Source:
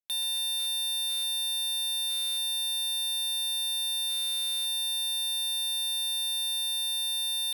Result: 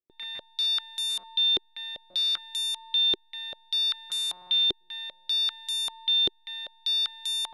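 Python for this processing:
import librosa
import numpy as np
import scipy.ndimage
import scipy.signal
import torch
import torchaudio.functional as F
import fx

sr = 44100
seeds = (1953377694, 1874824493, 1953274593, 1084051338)

p1 = x + fx.echo_filtered(x, sr, ms=708, feedback_pct=30, hz=980.0, wet_db=-22.0, dry=0)
y = fx.filter_held_lowpass(p1, sr, hz=5.1, low_hz=380.0, high_hz=7600.0)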